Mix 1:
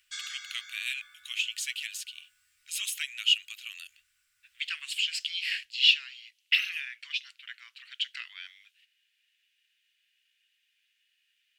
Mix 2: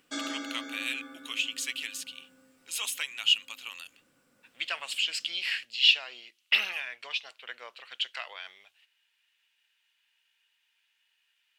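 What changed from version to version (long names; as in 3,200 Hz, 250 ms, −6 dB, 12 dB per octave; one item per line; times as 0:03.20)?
master: remove inverse Chebyshev band-stop filter 250–520 Hz, stop band 80 dB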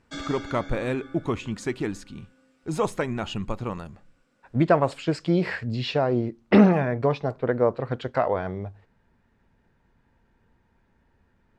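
speech: remove high-pass with resonance 2,900 Hz, resonance Q 5.2
master: add high-frequency loss of the air 72 metres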